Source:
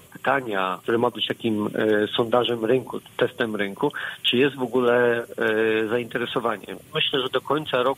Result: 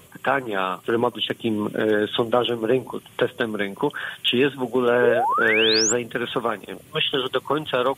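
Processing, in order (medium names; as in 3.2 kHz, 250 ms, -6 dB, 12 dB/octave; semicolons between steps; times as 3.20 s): painted sound rise, 5.02–5.93 s, 390–7900 Hz -21 dBFS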